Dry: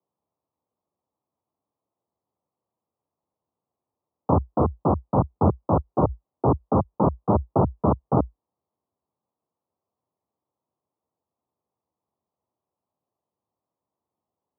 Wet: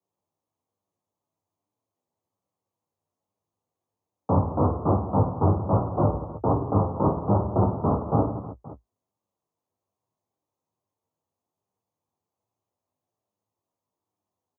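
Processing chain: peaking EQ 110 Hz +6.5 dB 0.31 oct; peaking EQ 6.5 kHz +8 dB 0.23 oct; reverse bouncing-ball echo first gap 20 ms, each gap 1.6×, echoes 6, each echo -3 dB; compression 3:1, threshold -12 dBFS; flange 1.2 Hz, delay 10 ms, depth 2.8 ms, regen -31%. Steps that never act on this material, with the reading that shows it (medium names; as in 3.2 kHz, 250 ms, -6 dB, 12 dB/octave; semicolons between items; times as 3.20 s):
peaking EQ 6.5 kHz: input has nothing above 1.3 kHz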